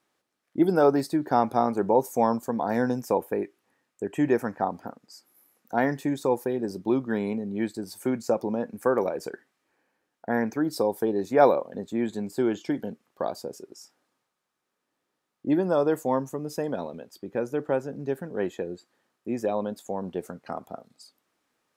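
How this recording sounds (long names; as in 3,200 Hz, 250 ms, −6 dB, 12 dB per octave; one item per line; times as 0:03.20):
background noise floor −81 dBFS
spectral slope −3.5 dB per octave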